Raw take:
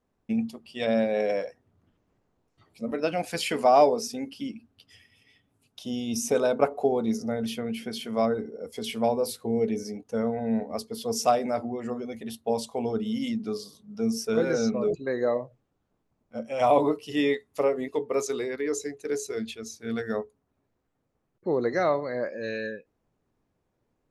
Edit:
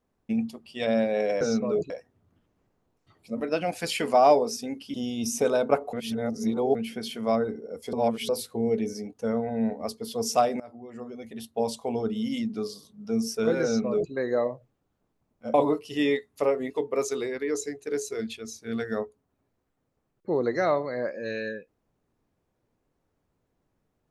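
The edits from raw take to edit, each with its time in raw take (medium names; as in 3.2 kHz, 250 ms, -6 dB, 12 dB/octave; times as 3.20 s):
4.45–5.84 s: delete
6.83–7.65 s: reverse
8.83–9.19 s: reverse
11.50–12.56 s: fade in, from -20.5 dB
14.53–15.02 s: copy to 1.41 s
16.44–16.72 s: delete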